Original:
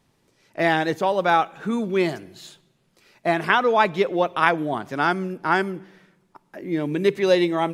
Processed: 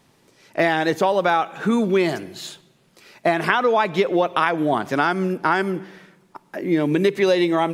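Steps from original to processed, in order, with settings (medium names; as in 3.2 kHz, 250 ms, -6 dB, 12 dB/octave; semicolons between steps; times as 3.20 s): bass shelf 82 Hz -11 dB; in parallel at -2.5 dB: peak limiter -13.5 dBFS, peak gain reduction 11.5 dB; on the sum: compression, threshold -18 dBFS, peak gain reduction 8.5 dB; trim +3.5 dB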